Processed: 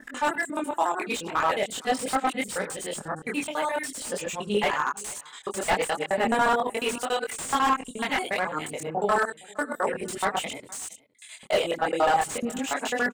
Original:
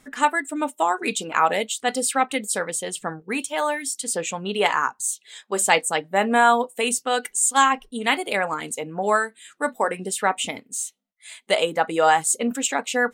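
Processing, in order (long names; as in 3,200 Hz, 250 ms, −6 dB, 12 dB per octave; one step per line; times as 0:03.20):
reversed piece by piece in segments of 71 ms
multi-voice chorus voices 4, 0.41 Hz, delay 23 ms, depth 4.2 ms
on a send: single-tap delay 464 ms −24 dB
on the sum: slew-rate limiting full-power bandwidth 150 Hz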